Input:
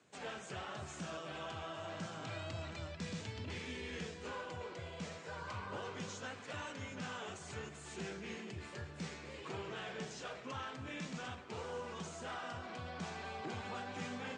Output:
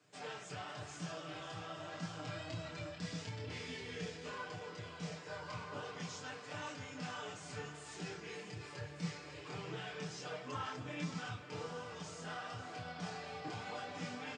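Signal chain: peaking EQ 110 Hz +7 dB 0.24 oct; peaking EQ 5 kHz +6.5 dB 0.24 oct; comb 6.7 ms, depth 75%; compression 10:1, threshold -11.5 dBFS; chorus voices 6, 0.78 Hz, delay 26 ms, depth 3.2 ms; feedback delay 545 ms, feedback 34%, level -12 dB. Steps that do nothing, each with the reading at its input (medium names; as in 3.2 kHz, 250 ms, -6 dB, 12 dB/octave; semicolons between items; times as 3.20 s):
compression, threshold -11.5 dBFS: peak at its input -27.0 dBFS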